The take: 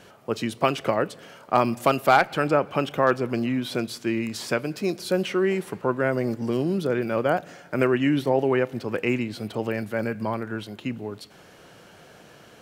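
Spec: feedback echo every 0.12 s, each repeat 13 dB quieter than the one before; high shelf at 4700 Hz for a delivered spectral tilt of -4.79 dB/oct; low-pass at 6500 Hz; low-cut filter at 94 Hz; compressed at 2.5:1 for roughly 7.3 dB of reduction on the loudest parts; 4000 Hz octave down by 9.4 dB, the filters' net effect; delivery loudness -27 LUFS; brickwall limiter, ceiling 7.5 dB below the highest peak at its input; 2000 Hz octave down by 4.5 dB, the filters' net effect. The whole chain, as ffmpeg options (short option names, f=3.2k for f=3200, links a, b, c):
-af "highpass=94,lowpass=6.5k,equalizer=f=2k:t=o:g=-3.5,equalizer=f=4k:t=o:g=-8.5,highshelf=f=4.7k:g=-5.5,acompressor=threshold=-26dB:ratio=2.5,alimiter=limit=-19.5dB:level=0:latency=1,aecho=1:1:120|240|360:0.224|0.0493|0.0108,volume=4.5dB"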